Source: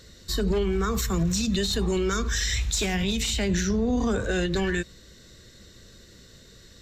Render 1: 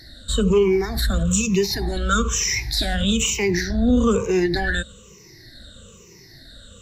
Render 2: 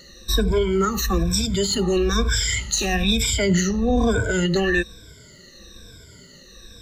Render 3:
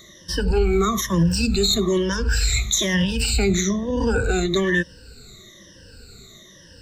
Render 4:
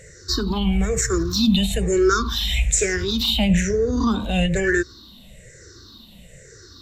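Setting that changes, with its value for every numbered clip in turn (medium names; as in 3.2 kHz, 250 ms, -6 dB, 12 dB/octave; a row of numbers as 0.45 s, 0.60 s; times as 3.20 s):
drifting ripple filter, ripples per octave: 0.77, 1.7, 1.2, 0.51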